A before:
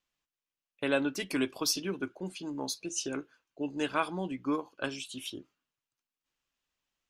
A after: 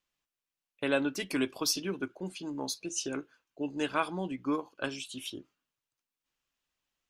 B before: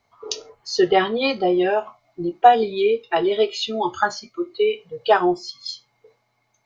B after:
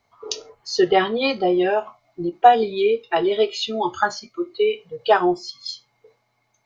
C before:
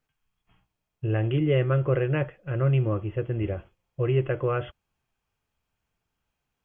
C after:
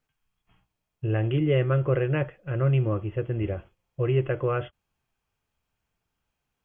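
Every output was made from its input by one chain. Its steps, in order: endings held to a fixed fall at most 570 dB/s

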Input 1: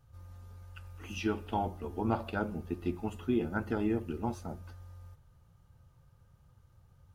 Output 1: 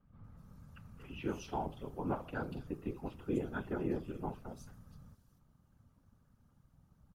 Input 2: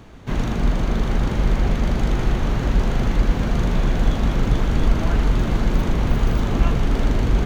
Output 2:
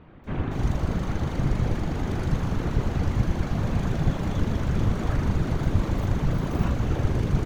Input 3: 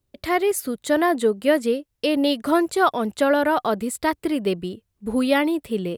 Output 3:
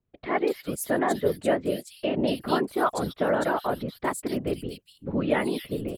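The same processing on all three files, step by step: whisper effect; bands offset in time lows, highs 240 ms, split 3.1 kHz; trim -5.5 dB

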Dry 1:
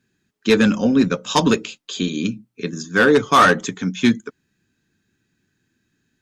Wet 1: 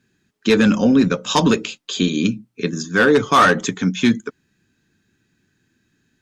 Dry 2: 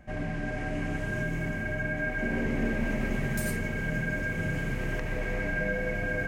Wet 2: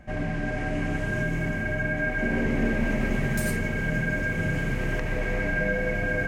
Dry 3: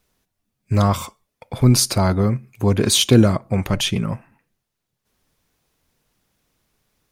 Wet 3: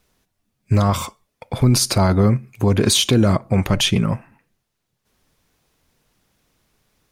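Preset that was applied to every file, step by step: treble shelf 11 kHz -4 dB; peak limiter -10.5 dBFS; trim +4 dB

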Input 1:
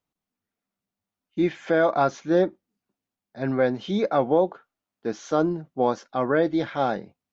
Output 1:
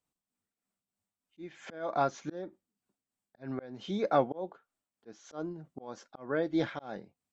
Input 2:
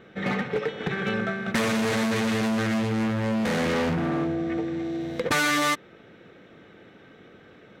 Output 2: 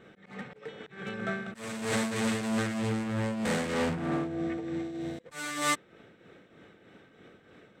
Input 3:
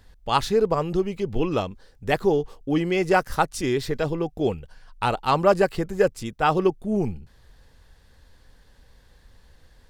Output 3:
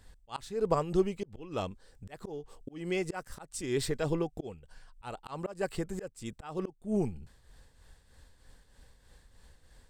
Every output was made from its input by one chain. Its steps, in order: peaking EQ 8.1 kHz +11 dB 0.32 oct; slow attack 401 ms; tremolo triangle 3.2 Hz, depth 60%; trim -2.5 dB

